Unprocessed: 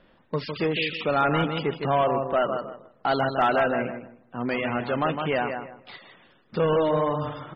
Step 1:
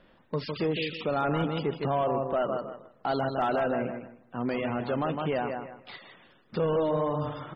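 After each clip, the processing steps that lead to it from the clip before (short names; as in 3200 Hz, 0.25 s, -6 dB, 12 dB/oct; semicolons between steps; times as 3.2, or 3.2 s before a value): dynamic EQ 2100 Hz, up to -7 dB, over -40 dBFS, Q 0.76; limiter -18.5 dBFS, peak gain reduction 3.5 dB; gain -1 dB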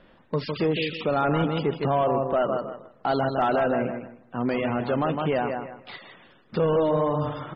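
air absorption 51 m; gain +4.5 dB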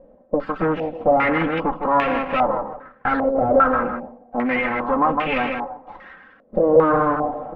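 minimum comb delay 3.8 ms; flange 0.47 Hz, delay 4.2 ms, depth 4.3 ms, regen -52%; stepped low-pass 2.5 Hz 580–2500 Hz; gain +6.5 dB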